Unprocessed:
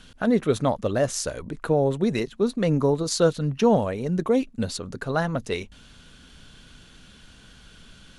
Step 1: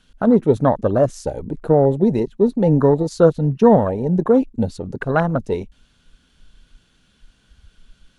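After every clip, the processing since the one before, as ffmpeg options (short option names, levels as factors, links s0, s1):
-af "afwtdn=0.0355,volume=2.24"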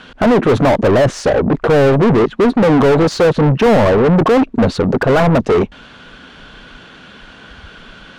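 -filter_complex "[0:a]aemphasis=mode=reproduction:type=50fm,asplit=2[s0][s1];[s1]highpass=f=720:p=1,volume=100,asoftclip=type=tanh:threshold=0.944[s2];[s0][s2]amix=inputs=2:normalize=0,lowpass=f=1400:p=1,volume=0.501,volume=0.708"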